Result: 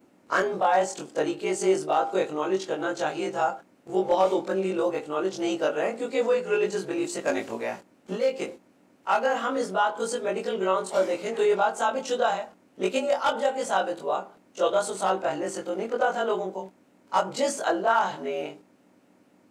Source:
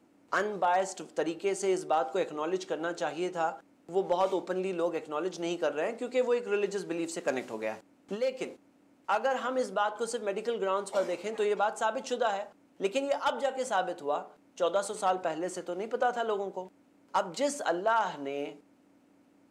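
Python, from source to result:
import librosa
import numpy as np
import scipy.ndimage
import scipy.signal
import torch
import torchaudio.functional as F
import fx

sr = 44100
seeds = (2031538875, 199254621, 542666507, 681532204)

y = fx.frame_reverse(x, sr, frame_ms=53.0)
y = y * librosa.db_to_amplitude(8.0)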